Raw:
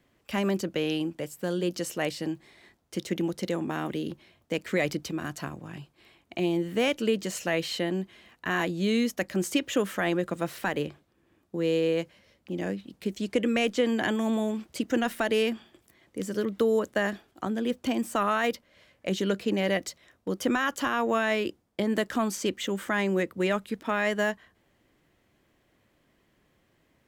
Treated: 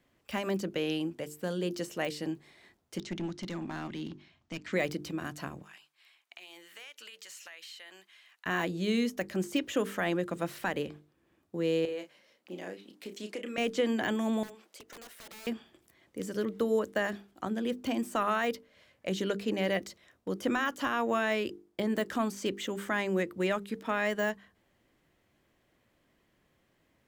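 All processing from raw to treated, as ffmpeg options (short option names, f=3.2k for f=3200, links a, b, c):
-filter_complex "[0:a]asettb=1/sr,asplit=3[a][b][c];[a]atrim=end=2.984[d];[b]atrim=start=2.98:end=4.73,asetpts=PTS-STARTPTS,afade=t=in:d=0.004:c=qsin,afade=t=out:st=1.746:d=0.004:c=qsin,lowpass=f=6.7k:w=0.5412,lowpass=f=6.7k:w=1.3066,equalizer=f=480:w=2.5:g=-13,aeval=exprs='clip(val(0),-1,0.0282)':c=same[e];[c]atrim=start=4.726[f];[d][e]acrossfade=d=0.004:c1=hsin:c2=qsin[g];[g][f]acrossfade=d=0.004:c1=qsin:c2=hsin,asettb=1/sr,asplit=3[h][i][j];[h]atrim=end=5.624[k];[i]atrim=start=5.62:end=8.46,asetpts=PTS-STARTPTS,afade=t=in:d=0.004:c=qsin,afade=t=out:st=2.836:d=0.004:c=qsin,highpass=1.4k,acompressor=threshold=-41dB:ratio=8:attack=3.2:release=140:knee=1:detection=peak[l];[j]atrim=start=8.456[m];[k][l]acrossfade=d=0.004:c1=hsin:c2=qsin[n];[n][m]acrossfade=d=0.004:c1=qsin:c2=hsin,asettb=1/sr,asplit=3[o][p][q];[o]atrim=end=11.854[r];[p]atrim=start=11.85:end=13.58,asetpts=PTS-STARTPTS,afade=t=in:d=0.004:c=qsin,afade=t=out:st=1.726:d=0.004:c=qsin,highpass=310,acompressor=threshold=-33dB:ratio=3:attack=3.2:release=140:knee=1:detection=peak,asplit=2[s][t];[t]adelay=33,volume=-8.5dB[u];[s][u]amix=inputs=2:normalize=0,atrim=end_sample=76293[v];[q]atrim=start=13.576[w];[r][v]acrossfade=d=0.004:c1=hsin:c2=qsin[x];[x][w]acrossfade=d=0.004:c1=qsin:c2=hsin,asettb=1/sr,asplit=3[y][z][aa];[y]atrim=end=14.434[ab];[z]atrim=start=14.43:end=15.47,asetpts=PTS-STARTPTS,afade=t=in:d=0.004:c=qsin,afade=t=out:st=1.036:d=0.004:c=qsin,highpass=f=370:w=0.5412,highpass=f=370:w=1.3066,aeval=exprs='(mod(22.4*val(0)+1,2)-1)/22.4':c=same,acompressor=threshold=-51dB:ratio=2:attack=3.2:release=140:knee=1:detection=peak[ac];[aa]atrim=start=15.466[ad];[ab][ac]acrossfade=d=0.004:c1=hsin:c2=qsin[ae];[ae][ad]acrossfade=d=0.004:c1=qsin:c2=hsin,deesser=0.8,bandreject=f=50:t=h:w=6,bandreject=f=100:t=h:w=6,bandreject=f=150:t=h:w=6,bandreject=f=200:t=h:w=6,bandreject=f=250:t=h:w=6,bandreject=f=300:t=h:w=6,bandreject=f=350:t=h:w=6,bandreject=f=400:t=h:w=6,bandreject=f=450:t=h:w=6,volume=-3dB"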